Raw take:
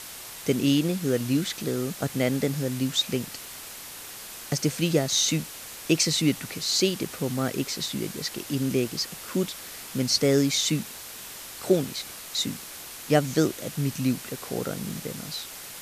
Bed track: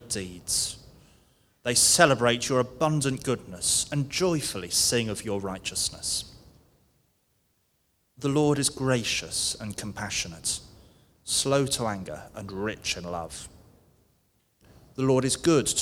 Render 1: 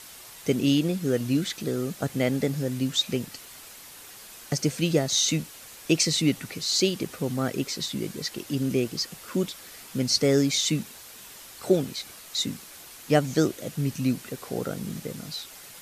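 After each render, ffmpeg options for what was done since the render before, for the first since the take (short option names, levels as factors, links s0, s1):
-af "afftdn=nr=6:nf=-41"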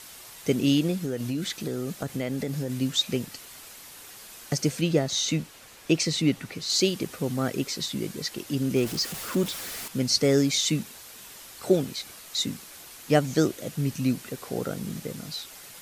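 -filter_complex "[0:a]asettb=1/sr,asplit=3[s0][s1][s2];[s0]atrim=end=0.944[s3];[s1]atrim=start=0.94:end=2.7,asetpts=PTS-STARTPTS,afade=t=in:d=0.004:c=qsin,afade=t=out:st=1.756:d=0.004:c=qsin,acompressor=threshold=0.0562:ratio=6:attack=3.2:release=140:knee=1:detection=peak[s4];[s2]atrim=start=2.696[s5];[s3][s4]acrossfade=d=0.004:c1=hsin:c2=qsin[s6];[s6][s5]acrossfade=d=0.004:c1=qsin:c2=hsin,asettb=1/sr,asplit=3[s7][s8][s9];[s7]atrim=end=4.814[s10];[s8]atrim=start=4.81:end=6.7,asetpts=PTS-STARTPTS,afade=t=in:d=0.004:c=qsin,afade=t=out:st=1.886:d=0.004:c=qsin,highshelf=f=5100:g=-8[s11];[s9]atrim=start=6.696[s12];[s10][s11]acrossfade=d=0.004:c1=hsin:c2=qsin[s13];[s13][s12]acrossfade=d=0.004:c1=qsin:c2=hsin,asettb=1/sr,asplit=3[s14][s15][s16];[s14]atrim=end=8.764[s17];[s15]atrim=start=8.76:end=9.88,asetpts=PTS-STARTPTS,afade=t=in:d=0.004:c=qsin,afade=t=out:st=1.116:d=0.004:c=qsin,aeval=exprs='val(0)+0.5*0.0211*sgn(val(0))':c=same[s18];[s16]atrim=start=9.876[s19];[s17][s18]acrossfade=d=0.004:c1=hsin:c2=qsin[s20];[s20][s19]acrossfade=d=0.004:c1=qsin:c2=hsin"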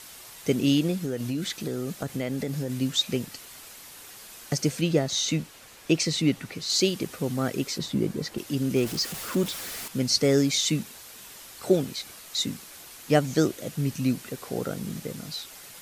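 -filter_complex "[0:a]asettb=1/sr,asplit=3[s0][s1][s2];[s0]atrim=end=7.784[s3];[s1]atrim=start=7.78:end=8.38,asetpts=PTS-STARTPTS,afade=t=in:d=0.004:c=qsin,afade=t=out:st=0.596:d=0.004:c=qsin,tiltshelf=f=1400:g=6[s4];[s2]atrim=start=8.376[s5];[s3][s4]acrossfade=d=0.004:c1=hsin:c2=qsin[s6];[s6][s5]acrossfade=d=0.004:c1=qsin:c2=hsin"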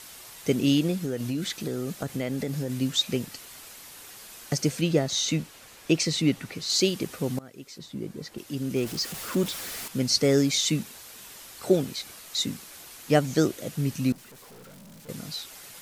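-filter_complex "[0:a]asettb=1/sr,asplit=3[s0][s1][s2];[s0]atrim=end=14.124[s3];[s1]atrim=start=14.12:end=15.09,asetpts=PTS-STARTPTS,afade=t=in:d=0.004:c=qsin,afade=t=out:st=0.966:d=0.004:c=qsin,aeval=exprs='(tanh(224*val(0)+0.15)-tanh(0.15))/224':c=same[s4];[s2]atrim=start=15.086[s5];[s3][s4]acrossfade=d=0.004:c1=hsin:c2=qsin[s6];[s6][s5]acrossfade=d=0.004:c1=qsin:c2=hsin,asplit=2[s7][s8];[s7]atrim=end=7.39,asetpts=PTS-STARTPTS,afade=t=out:st=7.386:d=0.004:c=hsin:silence=0.0749894[s9];[s8]atrim=start=7.39,asetpts=PTS-STARTPTS,afade=t=in:d=2.03:silence=0.0749894[s10];[s9][s10]concat=n=2:v=0:a=1"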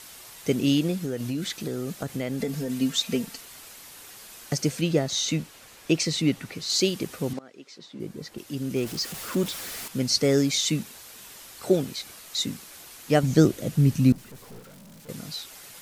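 -filter_complex "[0:a]asettb=1/sr,asplit=3[s0][s1][s2];[s0]atrim=end=2.404[s3];[s1]atrim=start=2.4:end=3.41,asetpts=PTS-STARTPTS,afade=t=in:d=0.004:c=qsin,afade=t=out:st=1.006:d=0.004:c=qsin,aecho=1:1:4.4:0.62,atrim=end_sample=44541[s4];[s2]atrim=start=3.406[s5];[s3][s4]acrossfade=d=0.004:c1=hsin:c2=qsin[s6];[s6][s5]acrossfade=d=0.004:c1=qsin:c2=hsin,asettb=1/sr,asplit=3[s7][s8][s9];[s7]atrim=end=7.334[s10];[s8]atrim=start=7.33:end=8,asetpts=PTS-STARTPTS,afade=t=in:d=0.004:c=qsin,afade=t=out:st=0.666:d=0.004:c=qsin,highpass=270,lowpass=5600[s11];[s9]atrim=start=7.996[s12];[s10][s11]acrossfade=d=0.004:c1=hsin:c2=qsin[s13];[s13][s12]acrossfade=d=0.004:c1=qsin:c2=hsin,asettb=1/sr,asplit=3[s14][s15][s16];[s14]atrim=end=13.234[s17];[s15]atrim=start=13.23:end=14.6,asetpts=PTS-STARTPTS,afade=t=in:d=0.004:c=qsin,afade=t=out:st=1.366:d=0.004:c=qsin,lowshelf=f=270:g=11[s18];[s16]atrim=start=14.596[s19];[s17][s18]acrossfade=d=0.004:c1=hsin:c2=qsin[s20];[s20][s19]acrossfade=d=0.004:c1=qsin:c2=hsin"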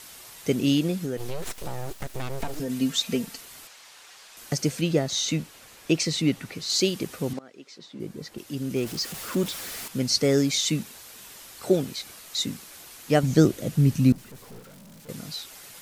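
-filter_complex "[0:a]asettb=1/sr,asplit=3[s0][s1][s2];[s0]atrim=end=1.174[s3];[s1]atrim=start=1.17:end=2.6,asetpts=PTS-STARTPTS,afade=t=in:d=0.004:c=qsin,afade=t=out:st=1.426:d=0.004:c=qsin,aeval=exprs='abs(val(0))':c=same[s4];[s2]atrim=start=2.596[s5];[s3][s4]acrossfade=d=0.004:c1=hsin:c2=qsin[s6];[s6][s5]acrossfade=d=0.004:c1=qsin:c2=hsin,asettb=1/sr,asplit=3[s7][s8][s9];[s7]atrim=end=3.674[s10];[s8]atrim=start=3.67:end=4.37,asetpts=PTS-STARTPTS,afade=t=in:d=0.004:c=qsin,afade=t=out:st=0.696:d=0.004:c=qsin,acrossover=split=530 7500:gain=0.178 1 0.178[s11][s12][s13];[s11][s12][s13]amix=inputs=3:normalize=0[s14];[s9]atrim=start=4.366[s15];[s10][s14]acrossfade=d=0.004:c1=hsin:c2=qsin[s16];[s16][s15]acrossfade=d=0.004:c1=qsin:c2=hsin"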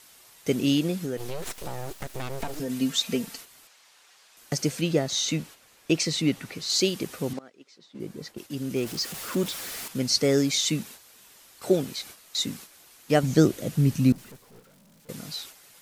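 -af "lowshelf=f=150:g=-4,agate=range=0.398:threshold=0.00708:ratio=16:detection=peak"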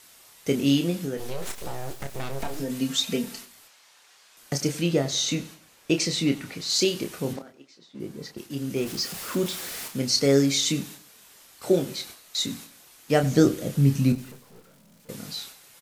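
-filter_complex "[0:a]asplit=2[s0][s1];[s1]adelay=29,volume=0.447[s2];[s0][s2]amix=inputs=2:normalize=0,aecho=1:1:94|188|282:0.112|0.0426|0.0162"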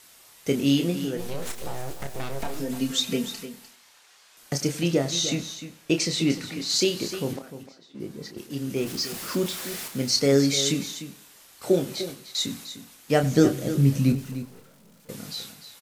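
-af "aecho=1:1:301:0.251"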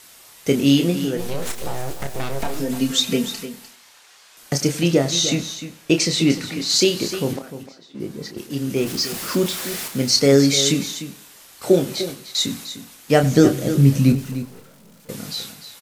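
-af "volume=2,alimiter=limit=0.794:level=0:latency=1"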